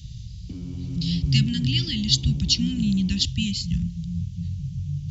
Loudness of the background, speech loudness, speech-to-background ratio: -37.0 LUFS, -24.0 LUFS, 13.0 dB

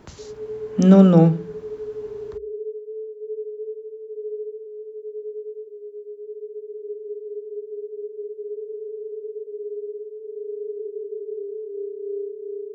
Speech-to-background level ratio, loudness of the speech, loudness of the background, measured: 19.5 dB, -14.0 LUFS, -33.5 LUFS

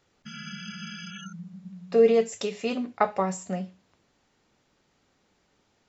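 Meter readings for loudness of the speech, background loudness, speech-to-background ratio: -25.5 LUFS, -40.5 LUFS, 15.0 dB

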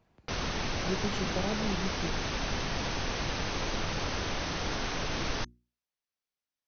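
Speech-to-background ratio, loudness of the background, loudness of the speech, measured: -5.0 dB, -33.5 LUFS, -38.5 LUFS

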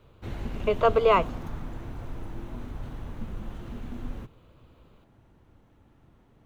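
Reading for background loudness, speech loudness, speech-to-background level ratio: -39.0 LUFS, -24.0 LUFS, 15.0 dB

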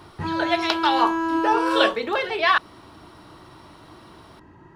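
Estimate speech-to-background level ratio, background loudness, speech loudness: 3.0 dB, -25.5 LUFS, -22.5 LUFS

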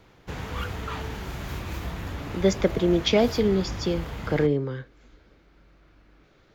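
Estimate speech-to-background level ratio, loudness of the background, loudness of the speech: 10.5 dB, -35.0 LUFS, -24.5 LUFS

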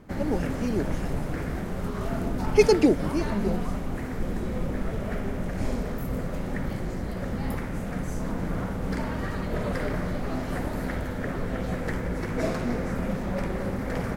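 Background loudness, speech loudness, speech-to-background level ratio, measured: -31.0 LUFS, -25.5 LUFS, 5.5 dB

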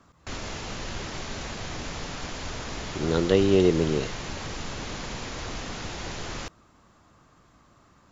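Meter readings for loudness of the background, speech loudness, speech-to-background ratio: -35.5 LUFS, -23.5 LUFS, 12.0 dB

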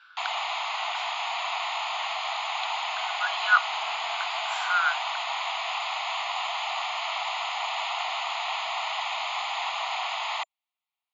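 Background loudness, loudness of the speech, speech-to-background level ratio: -29.5 LUFS, -28.0 LUFS, 1.5 dB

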